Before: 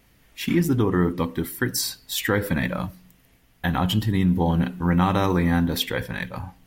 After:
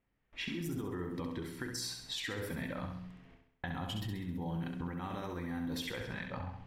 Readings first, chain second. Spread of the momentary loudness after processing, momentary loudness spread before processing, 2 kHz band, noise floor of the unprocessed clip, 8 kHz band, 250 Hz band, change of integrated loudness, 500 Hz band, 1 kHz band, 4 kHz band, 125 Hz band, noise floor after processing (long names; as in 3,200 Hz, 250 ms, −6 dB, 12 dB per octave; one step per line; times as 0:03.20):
4 LU, 10 LU, −14.0 dB, −59 dBFS, −14.0 dB, −17.0 dB, −16.5 dB, −16.5 dB, −17.0 dB, −12.0 dB, −17.0 dB, −78 dBFS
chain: mains-hum notches 60/120/180/240 Hz
noise gate with hold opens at −47 dBFS
low-pass that shuts in the quiet parts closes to 2,200 Hz, open at −18 dBFS
brickwall limiter −21 dBFS, peak gain reduction 12 dB
downward compressor 6 to 1, threshold −38 dBFS, peak gain reduction 13 dB
flutter between parallel walls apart 11.4 metres, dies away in 0.67 s